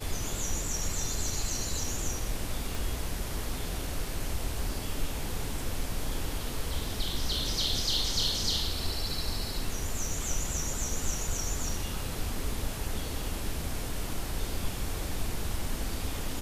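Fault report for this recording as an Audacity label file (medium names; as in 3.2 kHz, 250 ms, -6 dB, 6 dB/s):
2.750000	2.750000	pop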